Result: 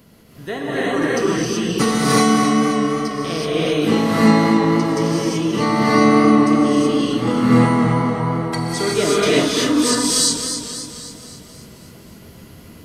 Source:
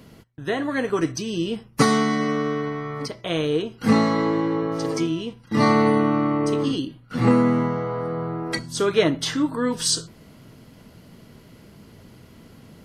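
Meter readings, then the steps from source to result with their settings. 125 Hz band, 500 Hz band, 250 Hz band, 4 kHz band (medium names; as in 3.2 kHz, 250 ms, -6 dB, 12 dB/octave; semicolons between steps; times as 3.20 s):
+5.5 dB, +4.5 dB, +6.0 dB, +7.0 dB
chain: treble shelf 9 kHz +9.5 dB; gated-style reverb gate 400 ms rising, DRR -7.5 dB; modulated delay 266 ms, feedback 55%, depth 59 cents, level -8 dB; trim -3 dB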